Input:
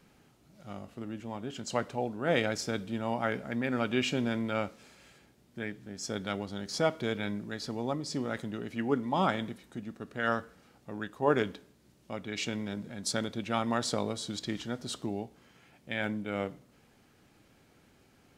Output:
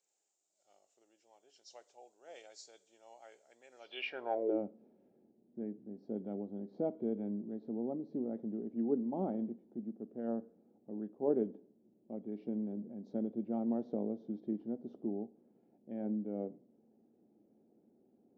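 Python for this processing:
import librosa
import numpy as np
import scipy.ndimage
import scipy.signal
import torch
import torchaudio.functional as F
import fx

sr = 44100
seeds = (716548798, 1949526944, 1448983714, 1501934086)

y = fx.freq_compress(x, sr, knee_hz=3100.0, ratio=1.5)
y = fx.band_shelf(y, sr, hz=520.0, db=16.0, octaves=1.7)
y = fx.filter_sweep_bandpass(y, sr, from_hz=7200.0, to_hz=220.0, start_s=3.77, end_s=4.64, q=6.7)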